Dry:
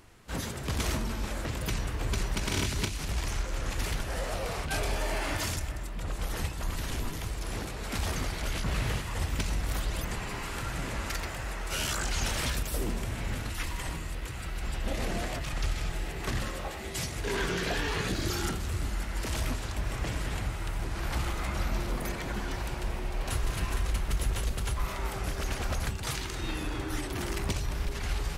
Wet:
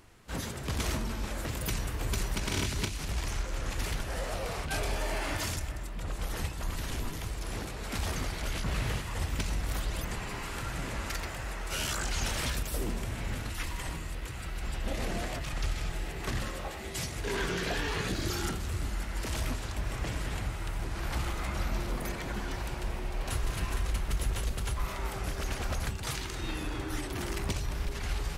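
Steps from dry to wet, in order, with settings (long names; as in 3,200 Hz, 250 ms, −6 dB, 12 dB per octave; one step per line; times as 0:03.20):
0:01.38–0:02.37: high-shelf EQ 10,000 Hz +10.5 dB
level −1.5 dB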